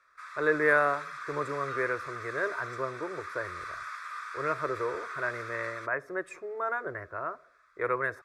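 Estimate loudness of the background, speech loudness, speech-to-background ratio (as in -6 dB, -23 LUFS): -40.0 LUFS, -32.0 LUFS, 8.0 dB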